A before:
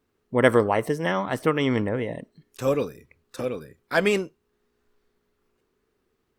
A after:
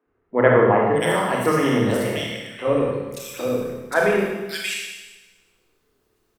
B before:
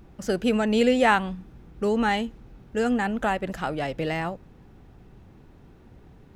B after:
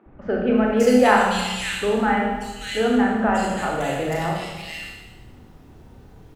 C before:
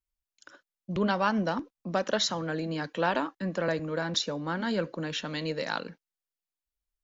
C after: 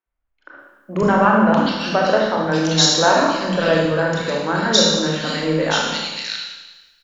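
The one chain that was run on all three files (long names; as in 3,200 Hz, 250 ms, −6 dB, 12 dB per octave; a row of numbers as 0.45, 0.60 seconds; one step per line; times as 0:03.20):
high-shelf EQ 5,500 Hz +5.5 dB
three-band delay without the direct sound mids, lows, highs 60/580 ms, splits 240/2,200 Hz
four-comb reverb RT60 1.2 s, combs from 25 ms, DRR −1.5 dB
normalise the peak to −1.5 dBFS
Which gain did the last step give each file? +2.0, +2.0, +10.5 decibels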